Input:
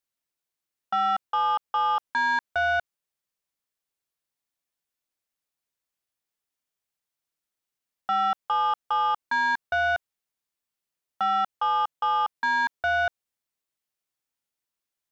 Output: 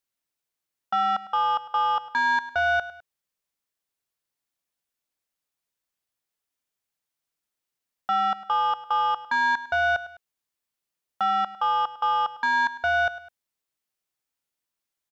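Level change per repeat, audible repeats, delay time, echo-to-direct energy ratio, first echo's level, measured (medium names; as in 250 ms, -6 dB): -7.0 dB, 2, 103 ms, -15.5 dB, -16.0 dB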